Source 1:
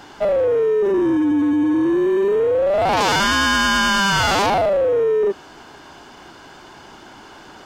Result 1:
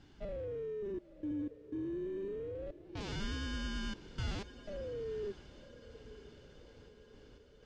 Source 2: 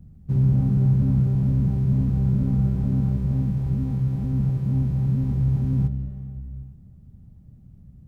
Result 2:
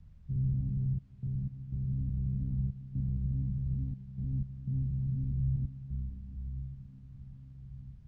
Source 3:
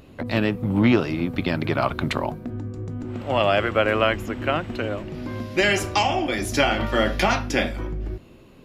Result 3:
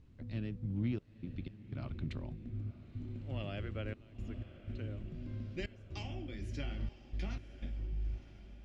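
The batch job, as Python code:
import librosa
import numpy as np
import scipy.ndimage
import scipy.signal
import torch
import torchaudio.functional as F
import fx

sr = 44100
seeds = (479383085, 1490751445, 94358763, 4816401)

y = fx.tone_stack(x, sr, knobs='10-0-1')
y = fx.rider(y, sr, range_db=4, speed_s=2.0)
y = fx.step_gate(y, sr, bpm=61, pattern='xxxx.x.xxxx.', floor_db=-24.0, edge_ms=4.5)
y = fx.dmg_noise_colour(y, sr, seeds[0], colour='pink', level_db=-78.0)
y = fx.air_absorb(y, sr, metres=97.0)
y = fx.echo_diffused(y, sr, ms=967, feedback_pct=59, wet_db=-15)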